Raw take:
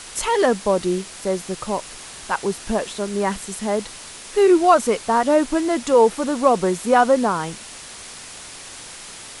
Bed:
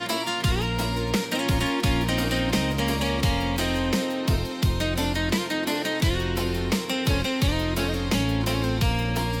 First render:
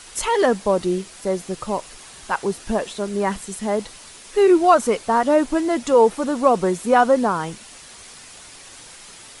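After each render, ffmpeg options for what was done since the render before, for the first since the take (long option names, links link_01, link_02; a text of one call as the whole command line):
ffmpeg -i in.wav -af "afftdn=noise_reduction=6:noise_floor=-38" out.wav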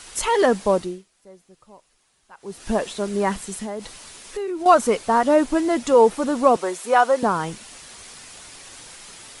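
ffmpeg -i in.wav -filter_complex "[0:a]asettb=1/sr,asplit=3[link_01][link_02][link_03];[link_01]atrim=end=3.444[link_04];[link_02]atrim=start=3.44:end=4.66,asetpts=PTS-STARTPTS,afade=type=in:duration=0.004:curve=qsin,afade=type=out:start_time=1.216:duration=0.004:curve=qsin,acompressor=threshold=-26dB:ratio=6:attack=3.2:release=140:knee=1:detection=peak[link_05];[link_03]atrim=start=4.656[link_06];[link_04][link_05]acrossfade=duration=0.004:curve1=hsin:curve2=qsin[link_07];[link_07][link_06]acrossfade=duration=0.004:curve1=qsin:curve2=hsin,asettb=1/sr,asplit=3[link_08][link_09][link_10];[link_08]atrim=end=6.564[link_11];[link_09]atrim=start=6.56:end=7.23,asetpts=PTS-STARTPTS,afade=type=in:duration=0.004:curve=qsin,afade=type=out:start_time=0.666:duration=0.004:curve=qsin,highpass=510[link_12];[link_10]atrim=start=7.226[link_13];[link_11][link_12]acrossfade=duration=0.004:curve1=hsin:curve2=qsin[link_14];[link_14][link_13]acrossfade=duration=0.004:curve1=qsin:curve2=hsin,asplit=3[link_15][link_16][link_17];[link_15]atrim=end=1.09,asetpts=PTS-STARTPTS,afade=type=out:start_time=0.75:duration=0.34:curve=qua:silence=0.0668344[link_18];[link_16]atrim=start=1.09:end=2.33,asetpts=PTS-STARTPTS,volume=-23.5dB[link_19];[link_17]atrim=start=2.33,asetpts=PTS-STARTPTS,afade=type=in:duration=0.34:curve=qua:silence=0.0668344[link_20];[link_18][link_19][link_20]concat=n=3:v=0:a=1" out.wav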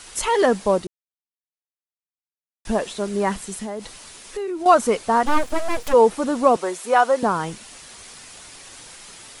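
ffmpeg -i in.wav -filter_complex "[0:a]asplit=3[link_01][link_02][link_03];[link_01]afade=type=out:start_time=5.25:duration=0.02[link_04];[link_02]aeval=exprs='abs(val(0))':channel_layout=same,afade=type=in:start_time=5.25:duration=0.02,afade=type=out:start_time=5.92:duration=0.02[link_05];[link_03]afade=type=in:start_time=5.92:duration=0.02[link_06];[link_04][link_05][link_06]amix=inputs=3:normalize=0,asplit=3[link_07][link_08][link_09];[link_07]atrim=end=0.87,asetpts=PTS-STARTPTS,afade=type=out:start_time=0.866:duration=0.004:curve=hsin[link_10];[link_08]atrim=start=0.87:end=2.65,asetpts=PTS-STARTPTS,volume=0[link_11];[link_09]atrim=start=2.65,asetpts=PTS-STARTPTS,afade=type=in:duration=0.004:curve=hsin[link_12];[link_10][link_11][link_12]concat=n=3:v=0:a=1" out.wav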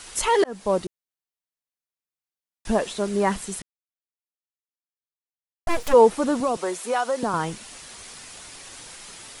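ffmpeg -i in.wav -filter_complex "[0:a]asettb=1/sr,asplit=3[link_01][link_02][link_03];[link_01]atrim=end=6.404[link_04];[link_02]atrim=start=6.4:end=7.34,asetpts=PTS-STARTPTS,afade=type=in:duration=0.004:curve=qsin,afade=type=out:start_time=0.936:duration=0.004:curve=qsin,acrossover=split=120|3000[link_05][link_06][link_07];[link_06]acompressor=threshold=-22dB:ratio=3:attack=3.2:release=140:knee=2.83:detection=peak[link_08];[link_05][link_08][link_07]amix=inputs=3:normalize=0[link_09];[link_03]atrim=start=7.336[link_10];[link_04][link_09]acrossfade=duration=0.004:curve1=hsin:curve2=qsin[link_11];[link_11][link_10]acrossfade=duration=0.004:curve1=qsin:curve2=hsin,asplit=4[link_12][link_13][link_14][link_15];[link_12]atrim=end=0.44,asetpts=PTS-STARTPTS,afade=type=out:start_time=0.436:duration=0.004:curve=hsin[link_16];[link_13]atrim=start=0.44:end=3.62,asetpts=PTS-STARTPTS,afade=type=in:duration=0.41,afade=type=out:start_time=3.176:duration=0.004:curve=hsin[link_17];[link_14]atrim=start=3.62:end=5.67,asetpts=PTS-STARTPTS,volume=0[link_18];[link_15]atrim=start=5.67,asetpts=PTS-STARTPTS,afade=type=in:duration=0.004:curve=hsin[link_19];[link_16][link_17][link_18][link_19]concat=n=4:v=0:a=1" out.wav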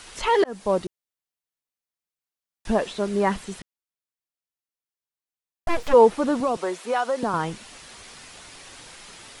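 ffmpeg -i in.wav -filter_complex "[0:a]acrossover=split=5000[link_01][link_02];[link_02]acompressor=threshold=-48dB:ratio=4:attack=1:release=60[link_03];[link_01][link_03]amix=inputs=2:normalize=0" out.wav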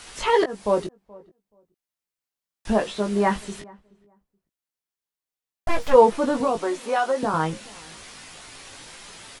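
ffmpeg -i in.wav -filter_complex "[0:a]asplit=2[link_01][link_02];[link_02]adelay=19,volume=-5dB[link_03];[link_01][link_03]amix=inputs=2:normalize=0,asplit=2[link_04][link_05];[link_05]adelay=427,lowpass=frequency=1000:poles=1,volume=-22.5dB,asplit=2[link_06][link_07];[link_07]adelay=427,lowpass=frequency=1000:poles=1,volume=0.19[link_08];[link_04][link_06][link_08]amix=inputs=3:normalize=0" out.wav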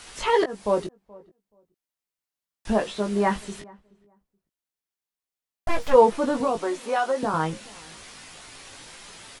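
ffmpeg -i in.wav -af "volume=-1.5dB" out.wav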